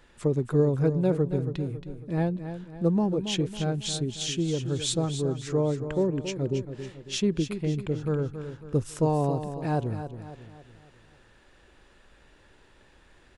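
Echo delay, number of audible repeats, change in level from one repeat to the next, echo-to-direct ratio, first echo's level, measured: 275 ms, 4, -7.0 dB, -9.0 dB, -10.0 dB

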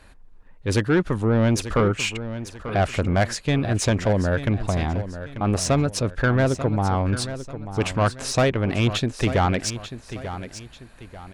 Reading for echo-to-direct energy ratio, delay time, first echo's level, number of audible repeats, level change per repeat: -11.5 dB, 890 ms, -12.0 dB, 2, -8.5 dB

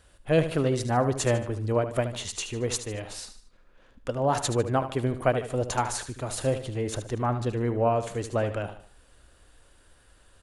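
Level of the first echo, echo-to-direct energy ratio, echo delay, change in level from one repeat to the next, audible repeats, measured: -11.0 dB, -10.0 dB, 75 ms, -7.5 dB, 3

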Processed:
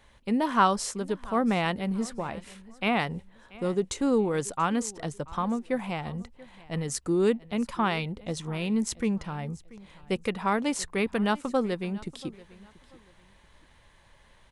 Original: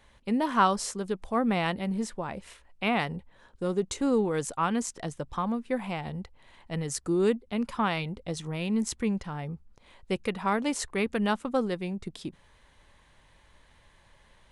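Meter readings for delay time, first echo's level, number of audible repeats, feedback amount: 684 ms, -21.0 dB, 2, 29%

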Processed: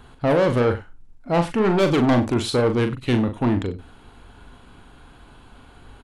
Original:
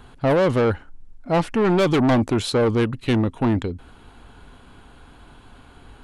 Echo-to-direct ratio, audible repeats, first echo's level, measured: -7.0 dB, 2, -7.5 dB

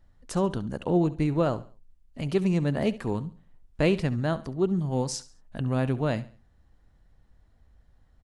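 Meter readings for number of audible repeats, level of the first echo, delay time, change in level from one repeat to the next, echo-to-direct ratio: 2, -17.0 dB, 69 ms, -9.0 dB, -16.5 dB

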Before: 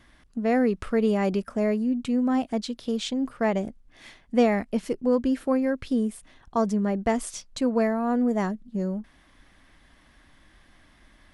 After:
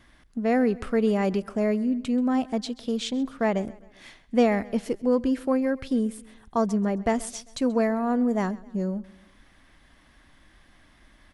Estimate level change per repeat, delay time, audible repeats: -6.5 dB, 132 ms, 3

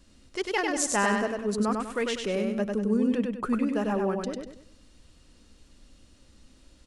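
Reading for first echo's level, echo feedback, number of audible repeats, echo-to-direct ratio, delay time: -3.5 dB, 37%, 4, -3.0 dB, 98 ms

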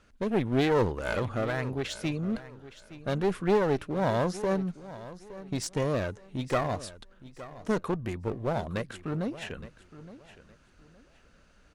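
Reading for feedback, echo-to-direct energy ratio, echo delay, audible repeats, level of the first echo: 26%, -15.5 dB, 866 ms, 2, -16.0 dB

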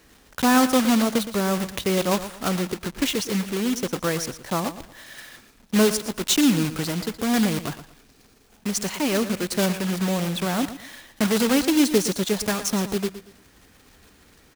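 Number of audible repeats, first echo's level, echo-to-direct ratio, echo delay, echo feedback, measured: 2, -13.0 dB, -12.5 dB, 116 ms, 28%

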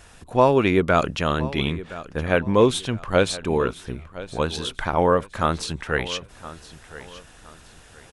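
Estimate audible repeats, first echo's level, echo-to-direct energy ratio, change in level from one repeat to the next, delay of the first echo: 2, -16.5 dB, -16.0 dB, -10.5 dB, 1017 ms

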